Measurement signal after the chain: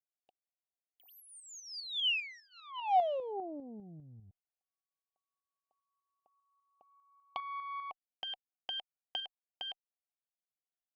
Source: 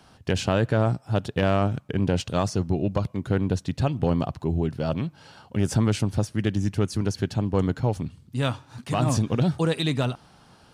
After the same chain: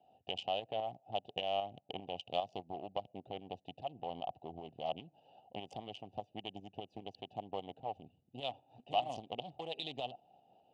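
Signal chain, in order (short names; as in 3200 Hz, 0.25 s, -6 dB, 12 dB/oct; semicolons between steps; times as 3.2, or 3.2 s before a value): Wiener smoothing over 41 samples; compressor 10:1, threshold -27 dBFS; tube stage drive 22 dB, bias 0.55; double band-pass 1500 Hz, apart 2 oct; tremolo saw up 5 Hz, depth 50%; gain +12 dB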